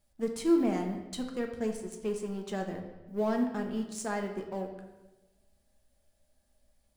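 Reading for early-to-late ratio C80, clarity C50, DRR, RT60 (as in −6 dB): 9.0 dB, 7.0 dB, 3.0 dB, 1.1 s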